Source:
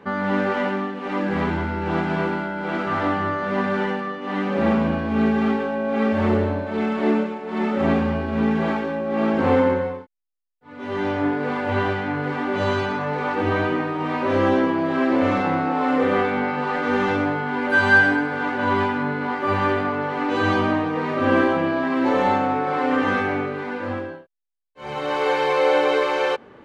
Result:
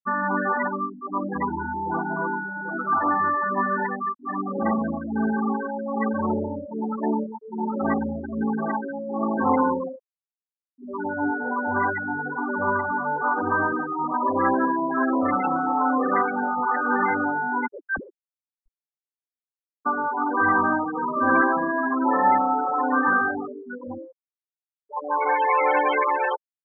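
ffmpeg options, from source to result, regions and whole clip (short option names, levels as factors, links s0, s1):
-filter_complex "[0:a]asettb=1/sr,asplit=3[s0][s1][s2];[s0]atrim=end=9.284[s3];[s1]atrim=start=9.28:end=13.73,asetpts=PTS-STARTPTS,afade=t=in:d=0.004:c=qsin,afade=t=out:st=4.446:d=0.004:c=qsin,lowpass=3600,aecho=1:1:114:0.316,atrim=end_sample=196245[s4];[s2]atrim=start=13.726[s5];[s3][s4]acrossfade=d=0.004:c1=hsin:c2=qsin[s6];[s6][s5]acrossfade=d=0.004:c1=qsin:c2=hsin,asettb=1/sr,asplit=3[s7][s8][s9];[s7]atrim=end=17.674[s10];[s8]atrim=start=17.67:end=19.86,asetpts=PTS-STARTPTS,afade=t=in:d=0.004:c=qsin,afade=t=out:st=2.186:d=0.004:c=qsin,aderivative,acrusher=samples=25:mix=1:aa=0.000001:lfo=1:lforange=40:lforate=3.3[s11];[s9]atrim=start=19.856[s12];[s10][s11]acrossfade=d=0.004:c1=hsin:c2=qsin[s13];[s13][s12]acrossfade=d=0.004:c1=qsin:c2=hsin,afftfilt=real='re*gte(hypot(re,im),0.178)':imag='im*gte(hypot(re,im),0.178)':win_size=1024:overlap=0.75,equalizer=f=125:t=o:w=1:g=-8,equalizer=f=250:t=o:w=1:g=6,equalizer=f=500:t=o:w=1:g=-3,equalizer=f=1000:t=o:w=1:g=12,equalizer=f=2000:t=o:w=1:g=9,equalizer=f=4000:t=o:w=1:g=11,volume=0.422"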